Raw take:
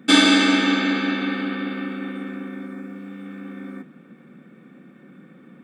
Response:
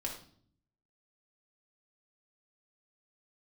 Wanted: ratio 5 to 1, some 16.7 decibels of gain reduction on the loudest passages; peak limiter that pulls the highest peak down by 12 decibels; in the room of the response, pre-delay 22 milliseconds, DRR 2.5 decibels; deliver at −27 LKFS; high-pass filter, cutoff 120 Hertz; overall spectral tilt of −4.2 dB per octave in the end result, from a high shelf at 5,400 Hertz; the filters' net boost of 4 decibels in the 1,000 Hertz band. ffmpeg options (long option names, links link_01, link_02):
-filter_complex "[0:a]highpass=120,equalizer=frequency=1000:width_type=o:gain=5.5,highshelf=frequency=5400:gain=-4,acompressor=threshold=-29dB:ratio=5,alimiter=level_in=2dB:limit=-24dB:level=0:latency=1,volume=-2dB,asplit=2[link_01][link_02];[1:a]atrim=start_sample=2205,adelay=22[link_03];[link_02][link_03]afir=irnorm=-1:irlink=0,volume=-3.5dB[link_04];[link_01][link_04]amix=inputs=2:normalize=0,volume=4.5dB"